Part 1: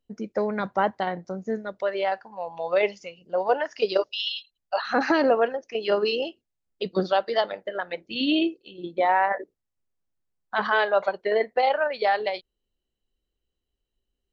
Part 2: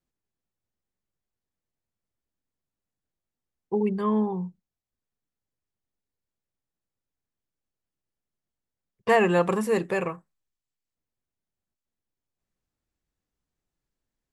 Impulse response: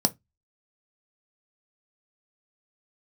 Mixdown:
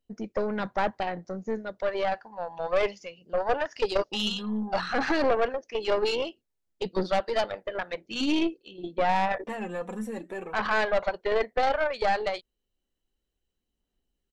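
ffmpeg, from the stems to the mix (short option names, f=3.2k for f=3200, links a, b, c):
-filter_complex "[0:a]volume=1.5dB[a];[1:a]acompressor=threshold=-39dB:ratio=1.5,aphaser=in_gain=1:out_gain=1:delay=4.1:decay=0.54:speed=0.37:type=sinusoidal,adelay=400,volume=-6dB,asplit=2[b][c];[c]volume=-16dB[d];[2:a]atrim=start_sample=2205[e];[d][e]afir=irnorm=-1:irlink=0[f];[a][b][f]amix=inputs=3:normalize=0,aeval=exprs='(tanh(7.94*val(0)+0.6)-tanh(0.6))/7.94':c=same"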